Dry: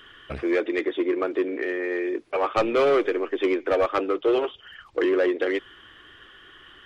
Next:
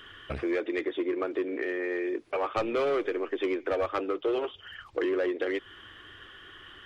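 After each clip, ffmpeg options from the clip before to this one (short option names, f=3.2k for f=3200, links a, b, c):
-af "equalizer=f=93:t=o:w=0.29:g=8.5,acompressor=threshold=-31dB:ratio=2"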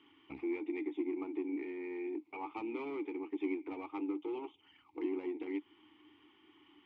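-filter_complex "[0:a]aeval=exprs='if(lt(val(0),0),0.708*val(0),val(0))':c=same,asplit=3[a][b][c];[a]bandpass=f=300:t=q:w=8,volume=0dB[d];[b]bandpass=f=870:t=q:w=8,volume=-6dB[e];[c]bandpass=f=2.24k:t=q:w=8,volume=-9dB[f];[d][e][f]amix=inputs=3:normalize=0,volume=3.5dB"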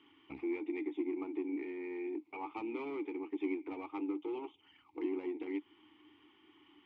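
-af anull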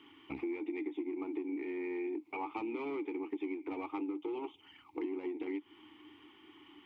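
-af "acompressor=threshold=-41dB:ratio=6,volume=6dB"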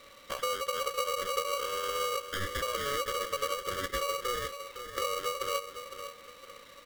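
-af "aecho=1:1:509|1018|1527|2036:0.316|0.101|0.0324|0.0104,aeval=exprs='val(0)*sgn(sin(2*PI*850*n/s))':c=same,volume=5dB"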